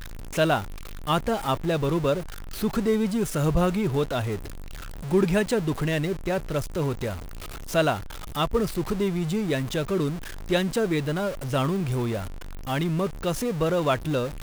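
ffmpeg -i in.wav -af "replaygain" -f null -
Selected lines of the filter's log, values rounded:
track_gain = +6.2 dB
track_peak = 0.270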